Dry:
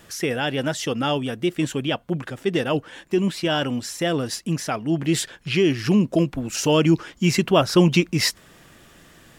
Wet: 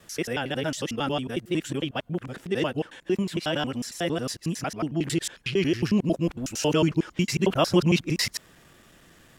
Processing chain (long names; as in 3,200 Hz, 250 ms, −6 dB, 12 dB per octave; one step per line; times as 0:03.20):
reversed piece by piece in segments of 91 ms
level −4.5 dB